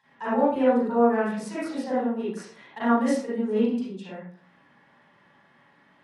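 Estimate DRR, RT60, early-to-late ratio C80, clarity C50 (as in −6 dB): −11.5 dB, 0.50 s, 4.0 dB, −5.0 dB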